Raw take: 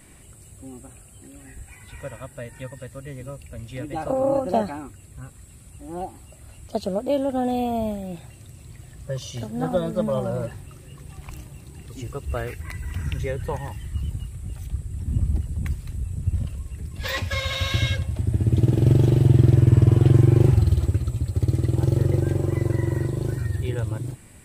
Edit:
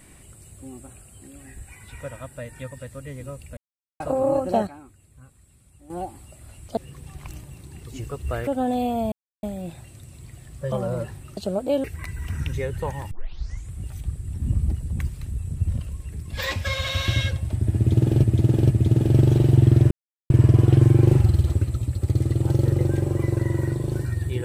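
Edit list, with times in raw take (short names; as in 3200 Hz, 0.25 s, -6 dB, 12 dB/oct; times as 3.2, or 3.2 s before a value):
3.57–4 mute
4.67–5.9 gain -10 dB
6.77–7.24 swap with 10.8–12.5
7.89 insert silence 0.31 s
9.18–10.15 cut
13.77 tape start 0.61 s
18.42–18.89 loop, 3 plays
19.63 insert silence 0.39 s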